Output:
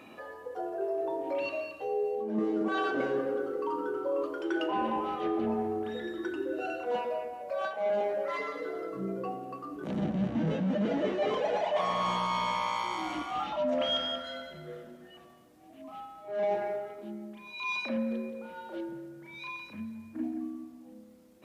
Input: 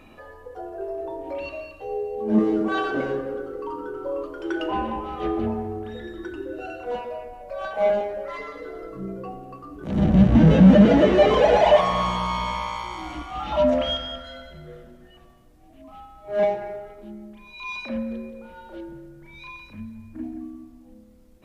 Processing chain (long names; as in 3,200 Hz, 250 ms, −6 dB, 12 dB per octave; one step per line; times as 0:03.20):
high-pass filter 190 Hz 12 dB per octave
reversed playback
downward compressor 16 to 1, threshold −26 dBFS, peak gain reduction 16.5 dB
reversed playback